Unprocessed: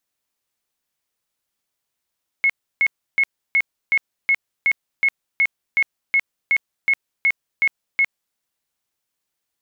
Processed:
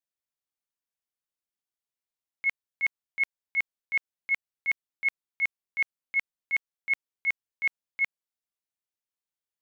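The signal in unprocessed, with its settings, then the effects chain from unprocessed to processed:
tone bursts 2180 Hz, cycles 122, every 0.37 s, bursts 16, -13 dBFS
gate -16 dBFS, range -16 dB

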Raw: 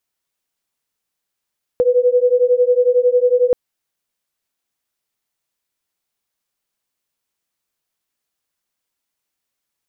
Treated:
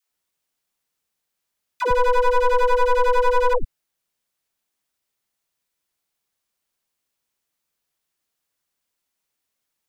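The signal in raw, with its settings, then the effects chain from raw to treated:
beating tones 489 Hz, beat 11 Hz, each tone -14 dBFS 1.73 s
one-sided fold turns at -19.5 dBFS; dispersion lows, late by 0.113 s, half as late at 470 Hz

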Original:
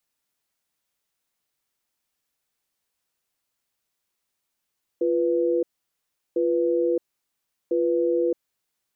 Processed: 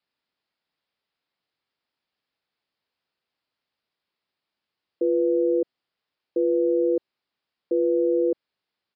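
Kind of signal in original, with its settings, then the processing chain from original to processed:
cadence 346 Hz, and 493 Hz, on 0.62 s, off 0.73 s, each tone -22 dBFS 3.33 s
HPF 160 Hz 6 dB/oct; low shelf 420 Hz +3 dB; downsampling 11025 Hz

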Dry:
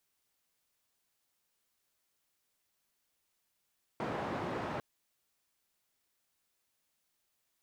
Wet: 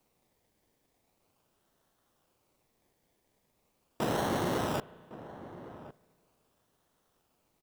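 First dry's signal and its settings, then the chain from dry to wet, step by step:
noise band 100–890 Hz, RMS -37.5 dBFS 0.80 s
in parallel at +3 dB: decimation with a swept rate 25×, swing 60% 0.4 Hz; on the sum: outdoor echo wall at 190 m, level -15 dB; spring tank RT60 2.2 s, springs 34/56 ms, chirp 65 ms, DRR 19.5 dB

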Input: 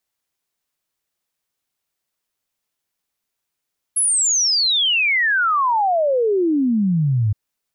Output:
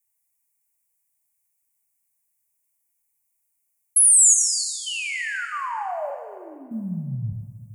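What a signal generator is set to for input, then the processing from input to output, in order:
log sweep 11000 Hz -> 100 Hz 3.37 s -14.5 dBFS
EQ curve 130 Hz 0 dB, 190 Hz -10 dB, 420 Hz -19 dB, 900 Hz -1 dB, 1300 Hz -14 dB, 2300 Hz +1 dB, 3600 Hz -19 dB, 5800 Hz -1 dB, 8600 Hz +11 dB; level quantiser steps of 15 dB; plate-style reverb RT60 1.9 s, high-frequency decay 0.95×, DRR 3 dB

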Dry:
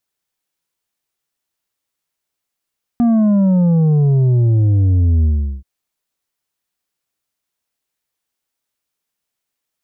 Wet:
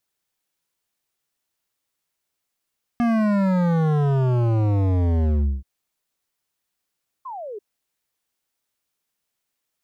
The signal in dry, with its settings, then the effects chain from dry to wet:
sub drop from 240 Hz, over 2.63 s, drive 6 dB, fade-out 0.39 s, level -10.5 dB
painted sound fall, 7.25–7.59, 390–1100 Hz -33 dBFS; hard clip -18.5 dBFS

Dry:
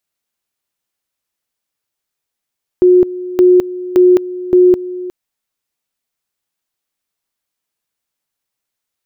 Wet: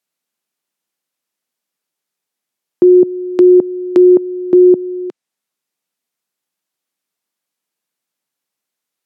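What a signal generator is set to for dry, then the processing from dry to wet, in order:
two-level tone 362 Hz -4 dBFS, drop 16.5 dB, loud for 0.21 s, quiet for 0.36 s, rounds 4
treble ducked by the level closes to 660 Hz, closed at -9 dBFS; HPF 160 Hz 24 dB/oct; low shelf 320 Hz +4 dB

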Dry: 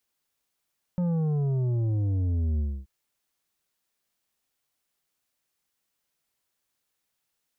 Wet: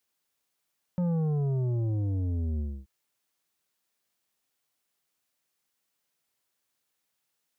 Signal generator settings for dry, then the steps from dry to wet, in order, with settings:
sub drop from 180 Hz, over 1.88 s, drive 8 dB, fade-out 0.27 s, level -24 dB
HPF 100 Hz 6 dB/oct

